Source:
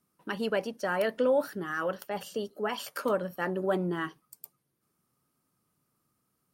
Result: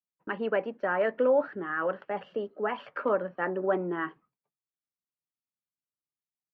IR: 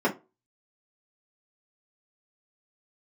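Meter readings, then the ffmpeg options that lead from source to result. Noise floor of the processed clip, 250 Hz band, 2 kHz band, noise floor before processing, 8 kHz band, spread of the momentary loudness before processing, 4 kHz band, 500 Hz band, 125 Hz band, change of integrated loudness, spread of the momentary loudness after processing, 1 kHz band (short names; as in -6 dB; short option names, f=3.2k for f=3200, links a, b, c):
under -85 dBFS, -1.0 dB, +1.5 dB, -78 dBFS, under -30 dB, 12 LU, -9.0 dB, +1.5 dB, -5.0 dB, +1.0 dB, 10 LU, +2.0 dB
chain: -filter_complex "[0:a]lowpass=f=2.3k:w=0.5412,lowpass=f=2.3k:w=1.3066,agate=range=-33dB:threshold=-53dB:ratio=3:detection=peak,acrossover=split=220[a][b];[a]acompressor=threshold=-55dB:ratio=6[c];[c][b]amix=inputs=2:normalize=0,volume=2dB"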